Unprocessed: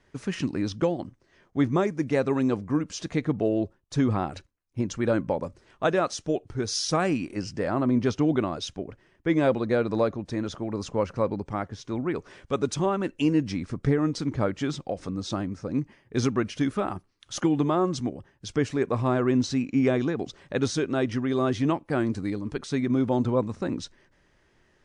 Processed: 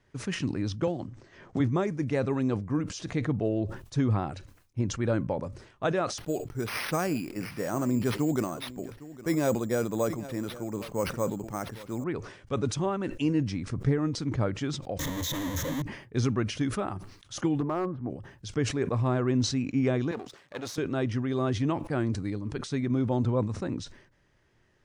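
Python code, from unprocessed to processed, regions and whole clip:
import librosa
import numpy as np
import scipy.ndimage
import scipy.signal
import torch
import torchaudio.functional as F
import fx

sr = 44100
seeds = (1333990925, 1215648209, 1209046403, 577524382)

y = fx.chain(x, sr, fx.block_float(bits=7),
    fx.steep_lowpass(hz=8500.0, slope=72),
    fx.band_squash(depth_pct=100), at=(0.87, 1.6))
y = fx.chain(y, sr, fx.peak_eq(hz=92.0, db=-13.0, octaves=0.51),
    fx.echo_single(ms=810, db=-18.0),
    fx.resample_bad(factor=6, down='none', up='hold'), at=(6.18, 12.04))
y = fx.chain(y, sr, fx.clip_1bit(),
    fx.ripple_eq(per_octave=1.1, db=12), at=(14.99, 15.82))
y = fx.chain(y, sr, fx.lowpass(hz=1500.0, slope=24),
    fx.low_shelf(hz=240.0, db=-5.5),
    fx.overload_stage(gain_db=18.0), at=(17.6, 18.1))
y = fx.chain(y, sr, fx.halfwave_gain(db=-12.0),
    fx.highpass(hz=490.0, slope=6), at=(20.11, 20.78))
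y = fx.peak_eq(y, sr, hz=110.0, db=7.0, octaves=0.73)
y = fx.sustainer(y, sr, db_per_s=93.0)
y = y * librosa.db_to_amplitude(-4.5)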